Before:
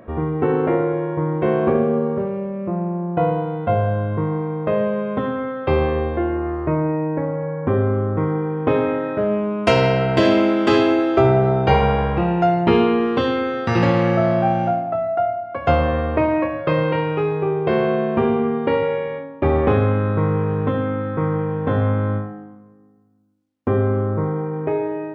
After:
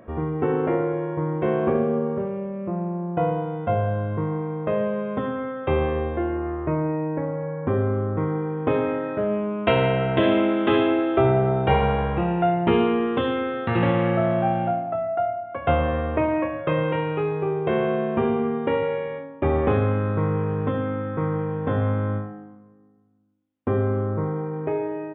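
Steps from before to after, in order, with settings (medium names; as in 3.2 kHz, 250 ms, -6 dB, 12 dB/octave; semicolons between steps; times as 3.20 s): resampled via 8 kHz; trim -4 dB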